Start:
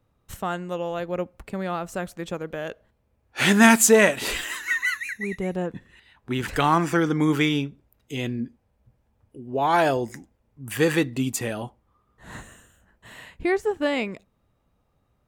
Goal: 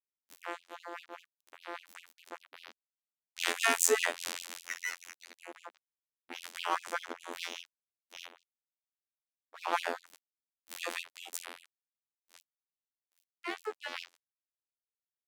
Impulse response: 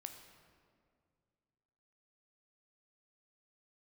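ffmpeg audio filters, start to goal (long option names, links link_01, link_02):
-filter_complex "[0:a]asplit=2[link_01][link_02];[1:a]atrim=start_sample=2205,adelay=49[link_03];[link_02][link_03]afir=irnorm=-1:irlink=0,volume=-9.5dB[link_04];[link_01][link_04]amix=inputs=2:normalize=0,afftfilt=real='hypot(re,im)*cos(PI*b)':imag='0':win_size=2048:overlap=0.75,aeval=exprs='sgn(val(0))*max(abs(val(0))-0.0422,0)':channel_layout=same,afftfilt=real='re*gte(b*sr/1024,230*pow(2600/230,0.5+0.5*sin(2*PI*5*pts/sr)))':imag='im*gte(b*sr/1024,230*pow(2600/230,0.5+0.5*sin(2*PI*5*pts/sr)))':win_size=1024:overlap=0.75,volume=-4.5dB"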